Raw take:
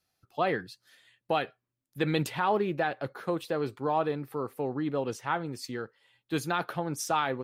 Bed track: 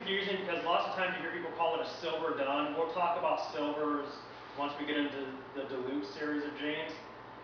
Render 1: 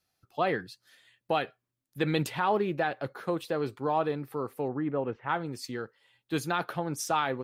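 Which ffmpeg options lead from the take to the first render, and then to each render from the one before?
-filter_complex "[0:a]asettb=1/sr,asplit=3[a][b][c];[a]atrim=end=4.684[d];[b]atrim=start=4.68:end=5.29,asetpts=PTS-STARTPTS,afade=t=in:d=0.004:c=qsin,afade=t=out:st=0.606:d=0.004:c=qsin,lowpass=f=2.3k:w=0.5412,lowpass=f=2.3k:w=1.3066[e];[c]atrim=start=5.286[f];[d][e]acrossfade=d=0.004:c1=hsin:c2=qsin[g];[g][f]acrossfade=d=0.004:c1=qsin:c2=hsin"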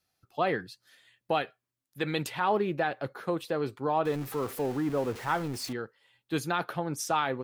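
-filter_complex "[0:a]asettb=1/sr,asplit=3[a][b][c];[a]atrim=end=1.424[d];[b]atrim=start=1.42:end=2.41,asetpts=PTS-STARTPTS,afade=t=in:d=0.004:c=qsin,afade=t=out:st=0.986:d=0.004:c=qsin,lowshelf=f=480:g=-5.5[e];[c]atrim=start=2.406[f];[d][e]acrossfade=d=0.004:c1=hsin:c2=qsin[g];[g][f]acrossfade=d=0.004:c1=qsin:c2=hsin,asettb=1/sr,asplit=3[h][i][j];[h]atrim=end=4.054[k];[i]atrim=start=4.05:end=5.73,asetpts=PTS-STARTPTS,afade=t=in:d=0.004:c=qsin,afade=t=out:st=1.676:d=0.004:c=qsin,aeval=exprs='val(0)+0.5*0.0133*sgn(val(0))':c=same[l];[j]atrim=start=5.726[m];[k][l]acrossfade=d=0.004:c1=hsin:c2=qsin[n];[n][m]acrossfade=d=0.004:c1=qsin:c2=hsin"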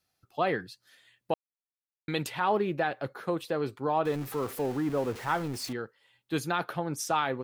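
-filter_complex "[0:a]asplit=3[a][b][c];[a]atrim=end=1.34,asetpts=PTS-STARTPTS,afade=t=out:st=1.336:d=0.004:c=hsin[d];[b]atrim=start=1.34:end=2.08,asetpts=PTS-STARTPTS,volume=0[e];[c]atrim=start=2.08,asetpts=PTS-STARTPTS,afade=t=in:d=0.004:c=hsin[f];[d][e][f]concat=n=3:v=0:a=1"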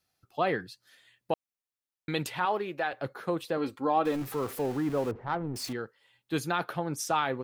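-filter_complex "[0:a]asettb=1/sr,asplit=3[a][b][c];[a]atrim=end=2.454[d];[b]atrim=start=2.45:end=2.93,asetpts=PTS-STARTPTS,afade=t=in:d=0.004:c=qsin,afade=t=out:st=0.476:d=0.004:c=qsin,highpass=f=580:p=1[e];[c]atrim=start=2.926[f];[d][e]acrossfade=d=0.004:c1=hsin:c2=qsin[g];[g][f]acrossfade=d=0.004:c1=qsin:c2=hsin,asettb=1/sr,asplit=3[h][i][j];[h]atrim=end=3.574[k];[i]atrim=start=3.57:end=4.22,asetpts=PTS-STARTPTS,afade=t=in:d=0.004:c=qsin,afade=t=out:st=0.646:d=0.004:c=qsin,aecho=1:1:3.7:0.65,atrim=end_sample=28665[l];[j]atrim=start=4.216[m];[k][l]acrossfade=d=0.004:c1=hsin:c2=qsin[n];[n][m]acrossfade=d=0.004:c1=qsin:c2=hsin,asettb=1/sr,asplit=3[o][p][q];[o]atrim=end=5.114[r];[p]atrim=start=5.11:end=5.56,asetpts=PTS-STARTPTS,afade=t=in:d=0.004:c=qsin,afade=t=out:st=0.446:d=0.004:c=qsin,adynamicsmooth=sensitivity=0.5:basefreq=710[s];[q]atrim=start=5.556[t];[r][s]acrossfade=d=0.004:c1=hsin:c2=qsin[u];[u][t]acrossfade=d=0.004:c1=qsin:c2=hsin"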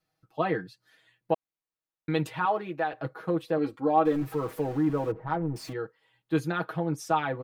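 -af "highshelf=f=2.5k:g=-11,aecho=1:1:6.3:0.86"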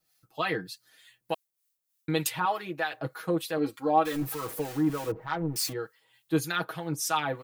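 -filter_complex "[0:a]crystalizer=i=6.5:c=0,acrossover=split=1100[a][b];[a]aeval=exprs='val(0)*(1-0.7/2+0.7/2*cos(2*PI*3.3*n/s))':c=same[c];[b]aeval=exprs='val(0)*(1-0.7/2-0.7/2*cos(2*PI*3.3*n/s))':c=same[d];[c][d]amix=inputs=2:normalize=0"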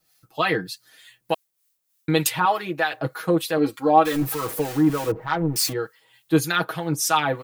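-af "volume=7.5dB"

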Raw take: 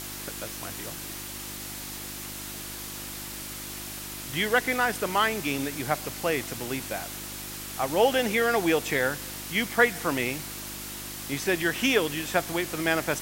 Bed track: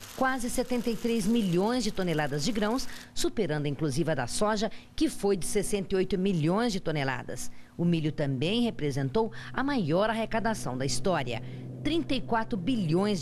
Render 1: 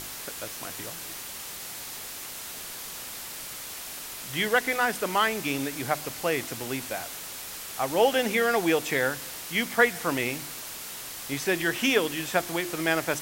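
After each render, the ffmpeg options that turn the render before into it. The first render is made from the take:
-af "bandreject=f=50:t=h:w=4,bandreject=f=100:t=h:w=4,bandreject=f=150:t=h:w=4,bandreject=f=200:t=h:w=4,bandreject=f=250:t=h:w=4,bandreject=f=300:t=h:w=4,bandreject=f=350:t=h:w=4"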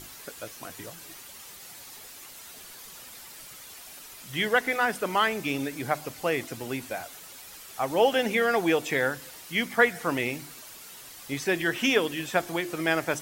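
-af "afftdn=nr=9:nf=-39"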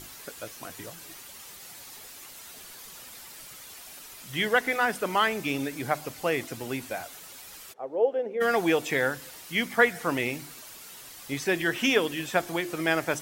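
-filter_complex "[0:a]asplit=3[a][b][c];[a]afade=t=out:st=7.72:d=0.02[d];[b]bandpass=f=470:t=q:w=3,afade=t=in:st=7.72:d=0.02,afade=t=out:st=8.4:d=0.02[e];[c]afade=t=in:st=8.4:d=0.02[f];[d][e][f]amix=inputs=3:normalize=0"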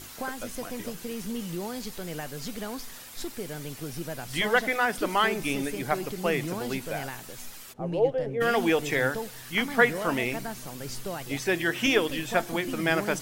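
-filter_complex "[1:a]volume=-8dB[a];[0:a][a]amix=inputs=2:normalize=0"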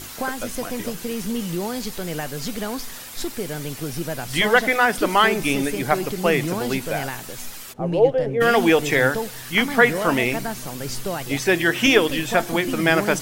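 -af "volume=7.5dB,alimiter=limit=-3dB:level=0:latency=1"

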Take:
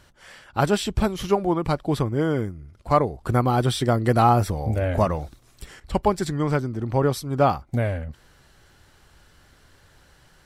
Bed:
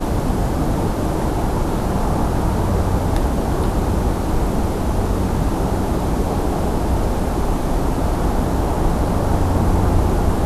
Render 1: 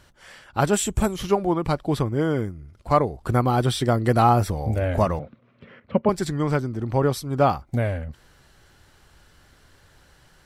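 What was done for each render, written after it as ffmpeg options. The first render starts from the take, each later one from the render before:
-filter_complex "[0:a]asettb=1/sr,asplit=3[a][b][c];[a]atrim=end=0.734[d];[b]atrim=start=0.73:end=1.16,asetpts=PTS-STARTPTS,afade=t=in:d=0.004:c=qsin,afade=t=out:st=0.426:d=0.004:c=qsin,highshelf=f=5.9k:t=q:w=3:g=6[e];[c]atrim=start=1.156[f];[d][e]acrossfade=d=0.004:c1=hsin:c2=qsin[g];[g][f]acrossfade=d=0.004:c1=qsin:c2=hsin,asettb=1/sr,asplit=3[h][i][j];[h]atrim=end=5.194[k];[i]atrim=start=5.19:end=6.09,asetpts=PTS-STARTPTS,afade=t=in:d=0.004:c=qsin,afade=t=out:st=0.896:d=0.004:c=qsin,highpass=f=110:w=0.5412,highpass=f=110:w=1.3066,equalizer=f=230:t=q:w=4:g=10,equalizer=f=330:t=q:w=4:g=-7,equalizer=f=530:t=q:w=4:g=8,equalizer=f=810:t=q:w=4:g=-9,equalizer=f=1.7k:t=q:w=4:g=-4,lowpass=f=2.5k:w=0.5412,lowpass=f=2.5k:w=1.3066[l];[j]atrim=start=6.086[m];[k][l]acrossfade=d=0.004:c1=hsin:c2=qsin[n];[n][m]acrossfade=d=0.004:c1=qsin:c2=hsin"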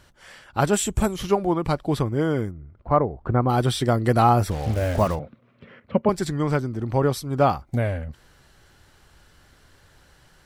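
-filter_complex "[0:a]asplit=3[a][b][c];[a]afade=t=out:st=2.5:d=0.02[d];[b]lowpass=1.5k,afade=t=in:st=2.5:d=0.02,afade=t=out:st=3.48:d=0.02[e];[c]afade=t=in:st=3.48:d=0.02[f];[d][e][f]amix=inputs=3:normalize=0,asplit=3[g][h][i];[g]afade=t=out:st=4.5:d=0.02[j];[h]acrusher=bits=5:mix=0:aa=0.5,afade=t=in:st=4.5:d=0.02,afade=t=out:st=5.14:d=0.02[k];[i]afade=t=in:st=5.14:d=0.02[l];[j][k][l]amix=inputs=3:normalize=0"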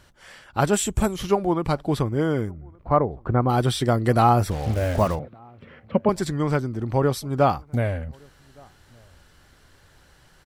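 -filter_complex "[0:a]asplit=2[a][b];[b]adelay=1166,volume=-29dB,highshelf=f=4k:g=-26.2[c];[a][c]amix=inputs=2:normalize=0"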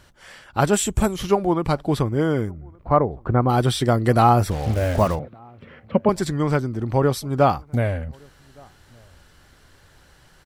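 -af "volume=2dB"

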